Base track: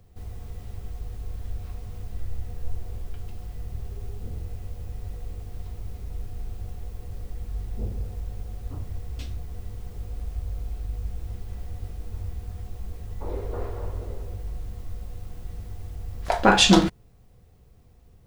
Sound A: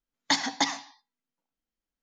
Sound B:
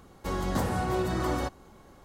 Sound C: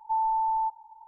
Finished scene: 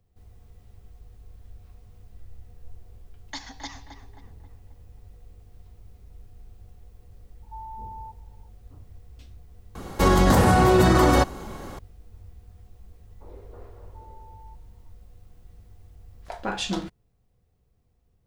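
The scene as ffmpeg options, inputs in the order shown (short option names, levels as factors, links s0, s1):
-filter_complex "[3:a]asplit=2[s0][s1];[0:a]volume=0.224[s2];[1:a]asplit=2[s3][s4];[s4]adelay=267,lowpass=f=2200:p=1,volume=0.398,asplit=2[s5][s6];[s6]adelay=267,lowpass=f=2200:p=1,volume=0.49,asplit=2[s7][s8];[s8]adelay=267,lowpass=f=2200:p=1,volume=0.49,asplit=2[s9][s10];[s10]adelay=267,lowpass=f=2200:p=1,volume=0.49,asplit=2[s11][s12];[s12]adelay=267,lowpass=f=2200:p=1,volume=0.49,asplit=2[s13][s14];[s14]adelay=267,lowpass=f=2200:p=1,volume=0.49[s15];[s3][s5][s7][s9][s11][s13][s15]amix=inputs=7:normalize=0[s16];[2:a]alimiter=level_in=14.1:limit=0.891:release=50:level=0:latency=1[s17];[s1]asuperstop=centerf=730:order=8:qfactor=1.8[s18];[s16]atrim=end=2.02,asetpts=PTS-STARTPTS,volume=0.237,afade=t=in:d=0.004:c=hsin,afade=t=out:st=2.016:d=0.004:c=hsin,adelay=3030[s19];[s0]atrim=end=1.07,asetpts=PTS-STARTPTS,volume=0.2,afade=t=in:d=0.004:c=hsin,afade=t=out:st=1.066:d=0.004:c=hsin,adelay=7420[s20];[s17]atrim=end=2.04,asetpts=PTS-STARTPTS,volume=0.422,afade=t=in:d=0.004:c=hsin,afade=t=out:st=2.036:d=0.004:c=hsin,adelay=9750[s21];[s18]atrim=end=1.07,asetpts=PTS-STARTPTS,volume=0.251,afade=t=in:d=0.004:c=hsin,afade=t=out:st=1.066:d=0.004:c=hsin,adelay=13850[s22];[s2][s19][s20][s21][s22]amix=inputs=5:normalize=0"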